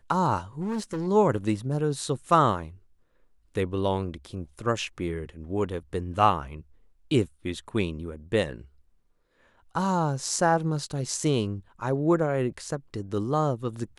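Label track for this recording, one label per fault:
0.610000	1.080000	clipping −26 dBFS

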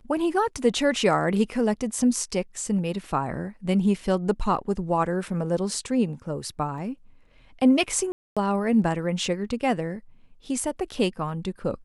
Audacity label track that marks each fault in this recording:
6.780000	6.780000	drop-out 2.1 ms
8.120000	8.370000	drop-out 246 ms

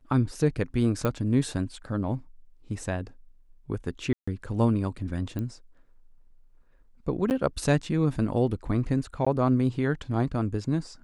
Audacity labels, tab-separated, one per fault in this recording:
1.050000	1.050000	click −15 dBFS
4.130000	4.280000	drop-out 145 ms
5.390000	5.390000	click −21 dBFS
7.300000	7.310000	drop-out 9.6 ms
9.250000	9.270000	drop-out 15 ms

